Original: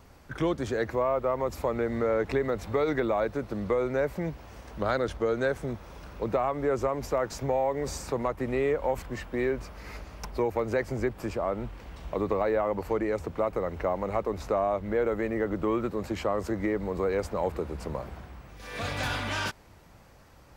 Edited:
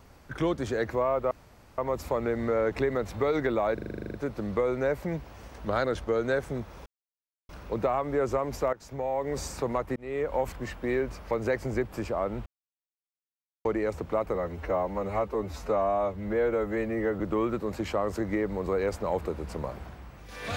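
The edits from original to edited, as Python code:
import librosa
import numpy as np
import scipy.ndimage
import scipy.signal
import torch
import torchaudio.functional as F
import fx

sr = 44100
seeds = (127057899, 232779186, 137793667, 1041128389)

y = fx.edit(x, sr, fx.insert_room_tone(at_s=1.31, length_s=0.47),
    fx.stutter(start_s=3.27, slice_s=0.04, count=11),
    fx.insert_silence(at_s=5.99, length_s=0.63),
    fx.fade_in_from(start_s=7.23, length_s=0.6, floor_db=-17.0),
    fx.fade_in_span(start_s=8.46, length_s=0.36),
    fx.cut(start_s=9.81, length_s=0.76),
    fx.silence(start_s=11.72, length_s=1.19),
    fx.stretch_span(start_s=13.61, length_s=1.9, factor=1.5), tone=tone)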